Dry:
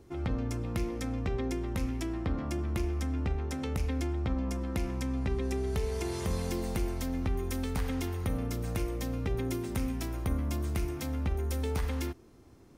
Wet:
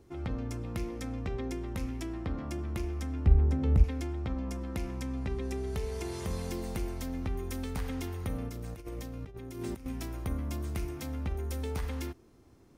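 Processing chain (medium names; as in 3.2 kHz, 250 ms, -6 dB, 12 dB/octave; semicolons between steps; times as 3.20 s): 3.26–3.84 s: tilt EQ -3.5 dB/octave; 8.49–9.86 s: compressor with a negative ratio -36 dBFS, ratio -0.5; trim -3 dB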